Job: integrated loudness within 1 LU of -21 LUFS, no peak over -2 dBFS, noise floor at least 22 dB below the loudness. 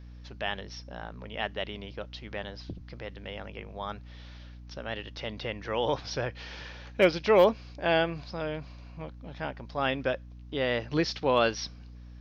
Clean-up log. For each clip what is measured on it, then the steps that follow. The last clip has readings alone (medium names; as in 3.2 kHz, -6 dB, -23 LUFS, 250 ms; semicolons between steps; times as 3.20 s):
hum 60 Hz; highest harmonic 300 Hz; hum level -43 dBFS; loudness -30.5 LUFS; peak level -10.0 dBFS; loudness target -21.0 LUFS
-> de-hum 60 Hz, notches 5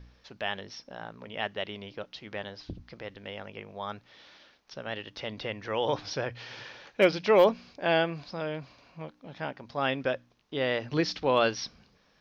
hum not found; loudness -30.0 LUFS; peak level -10.0 dBFS; loudness target -21.0 LUFS
-> trim +9 dB; peak limiter -2 dBFS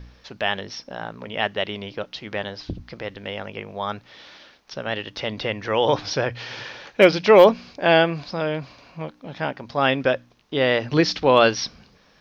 loudness -21.5 LUFS; peak level -2.0 dBFS; noise floor -57 dBFS